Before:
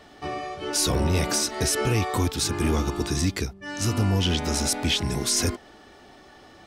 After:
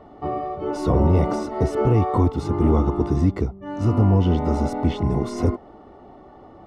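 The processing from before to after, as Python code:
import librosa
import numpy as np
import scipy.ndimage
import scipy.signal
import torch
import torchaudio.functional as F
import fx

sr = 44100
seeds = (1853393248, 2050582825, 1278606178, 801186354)

y = scipy.signal.savgol_filter(x, 65, 4, mode='constant')
y = F.gain(torch.from_numpy(y), 6.0).numpy()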